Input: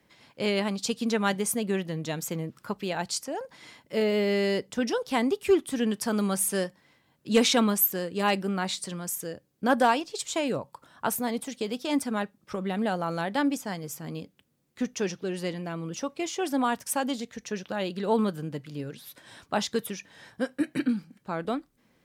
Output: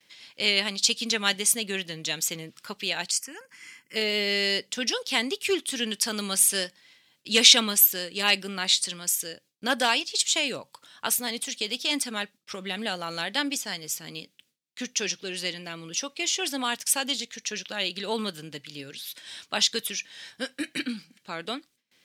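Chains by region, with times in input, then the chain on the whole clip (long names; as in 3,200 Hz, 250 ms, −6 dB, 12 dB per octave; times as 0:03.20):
0:03.11–0:03.96: high-pass filter 110 Hz + phaser with its sweep stopped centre 1,600 Hz, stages 4
whole clip: meter weighting curve D; noise gate with hold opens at −52 dBFS; high-shelf EQ 2,900 Hz +9 dB; level −5 dB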